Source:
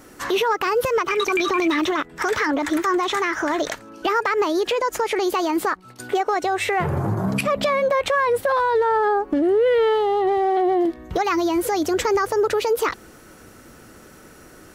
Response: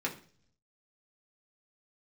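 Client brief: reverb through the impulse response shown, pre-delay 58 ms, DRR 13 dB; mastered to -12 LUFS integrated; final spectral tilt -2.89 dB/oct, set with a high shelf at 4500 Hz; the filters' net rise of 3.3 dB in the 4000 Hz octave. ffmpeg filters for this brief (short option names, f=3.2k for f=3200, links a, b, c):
-filter_complex "[0:a]equalizer=f=4k:t=o:g=5.5,highshelf=f=4.5k:g=-3,asplit=2[a][b];[1:a]atrim=start_sample=2205,adelay=58[c];[b][c]afir=irnorm=-1:irlink=0,volume=-18dB[d];[a][d]amix=inputs=2:normalize=0,volume=8.5dB"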